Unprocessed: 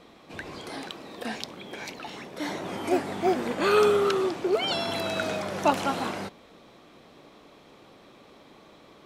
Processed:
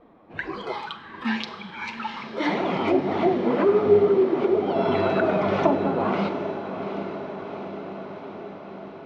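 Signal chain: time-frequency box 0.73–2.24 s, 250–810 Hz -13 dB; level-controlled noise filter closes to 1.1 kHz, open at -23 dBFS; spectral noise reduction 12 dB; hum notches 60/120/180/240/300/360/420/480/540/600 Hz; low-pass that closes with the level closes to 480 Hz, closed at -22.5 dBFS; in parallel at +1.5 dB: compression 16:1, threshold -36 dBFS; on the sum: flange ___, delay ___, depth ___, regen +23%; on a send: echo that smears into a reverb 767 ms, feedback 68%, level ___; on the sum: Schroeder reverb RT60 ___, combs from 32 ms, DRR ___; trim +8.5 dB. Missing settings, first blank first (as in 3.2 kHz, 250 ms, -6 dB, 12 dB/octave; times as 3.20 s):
1.9 Hz, 2.2 ms, 8.1 ms, -10 dB, 0.92 s, 11.5 dB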